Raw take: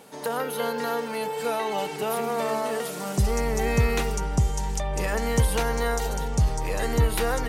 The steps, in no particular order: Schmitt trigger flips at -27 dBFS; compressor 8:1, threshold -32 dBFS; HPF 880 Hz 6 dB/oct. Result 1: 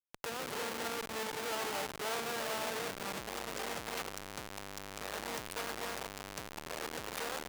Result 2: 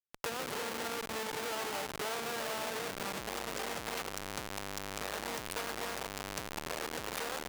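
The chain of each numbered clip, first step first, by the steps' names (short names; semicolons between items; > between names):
Schmitt trigger > compressor > HPF; Schmitt trigger > HPF > compressor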